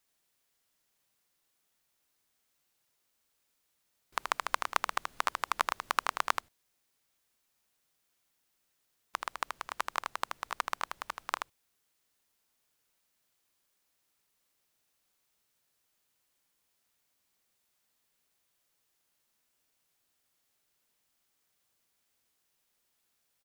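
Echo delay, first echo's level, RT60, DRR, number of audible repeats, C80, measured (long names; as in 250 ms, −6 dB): 79 ms, −5.5 dB, no reverb audible, no reverb audible, 1, no reverb audible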